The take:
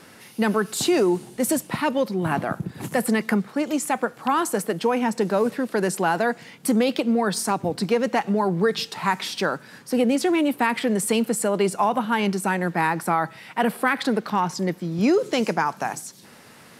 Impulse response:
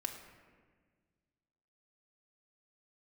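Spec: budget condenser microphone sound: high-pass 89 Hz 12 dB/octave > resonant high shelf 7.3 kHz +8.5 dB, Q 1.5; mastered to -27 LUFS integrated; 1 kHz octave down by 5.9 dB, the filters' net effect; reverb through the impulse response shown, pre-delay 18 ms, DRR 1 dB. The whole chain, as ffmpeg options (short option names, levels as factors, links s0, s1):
-filter_complex "[0:a]equalizer=f=1000:t=o:g=-7.5,asplit=2[s0][s1];[1:a]atrim=start_sample=2205,adelay=18[s2];[s1][s2]afir=irnorm=-1:irlink=0,volume=0.891[s3];[s0][s3]amix=inputs=2:normalize=0,highpass=89,highshelf=f=7300:t=q:w=1.5:g=8.5,volume=0.501"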